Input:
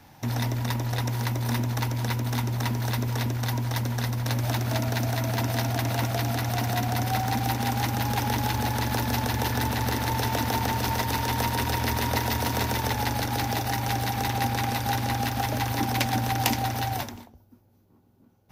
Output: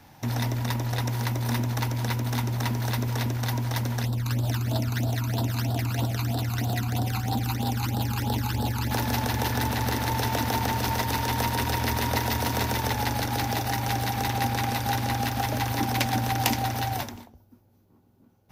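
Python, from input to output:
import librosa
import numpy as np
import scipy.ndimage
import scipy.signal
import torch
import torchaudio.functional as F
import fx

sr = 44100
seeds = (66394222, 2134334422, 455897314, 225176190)

y = fx.phaser_stages(x, sr, stages=12, low_hz=560.0, high_hz=2200.0, hz=3.1, feedback_pct=25, at=(4.03, 8.91))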